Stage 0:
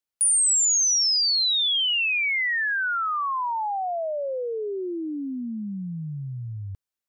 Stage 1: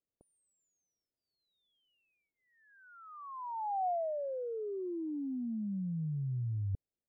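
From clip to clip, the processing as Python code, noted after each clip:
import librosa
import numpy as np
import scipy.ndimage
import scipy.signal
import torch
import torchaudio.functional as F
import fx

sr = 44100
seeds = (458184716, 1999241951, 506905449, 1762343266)

y = scipy.signal.sosfilt(scipy.signal.cheby2(4, 60, 2000.0, 'lowpass', fs=sr, output='sos'), x)
y = fx.over_compress(y, sr, threshold_db=-36.0, ratio=-1.0)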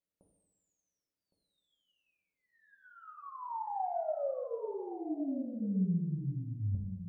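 y = x + 10.0 ** (-14.0 / 20.0) * np.pad(x, (int(1113 * sr / 1000.0), 0))[:len(x)]
y = fx.rev_fdn(y, sr, rt60_s=1.2, lf_ratio=1.05, hf_ratio=0.5, size_ms=32.0, drr_db=-1.0)
y = y * librosa.db_to_amplitude(-4.0)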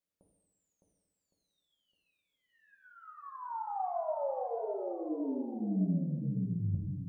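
y = x + 10.0 ** (-5.0 / 20.0) * np.pad(x, (int(611 * sr / 1000.0), 0))[:len(x)]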